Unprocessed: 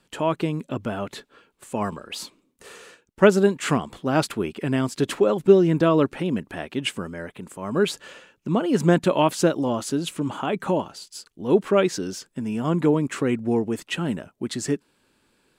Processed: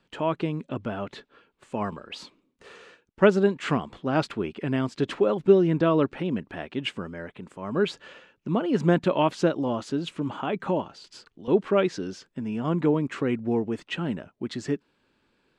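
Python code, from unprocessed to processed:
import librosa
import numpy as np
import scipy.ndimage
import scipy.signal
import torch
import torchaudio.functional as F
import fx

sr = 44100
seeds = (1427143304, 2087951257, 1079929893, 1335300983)

y = scipy.signal.sosfilt(scipy.signal.butter(2, 4200.0, 'lowpass', fs=sr, output='sos'), x)
y = fx.band_squash(y, sr, depth_pct=70, at=(11.04, 11.48))
y = F.gain(torch.from_numpy(y), -3.0).numpy()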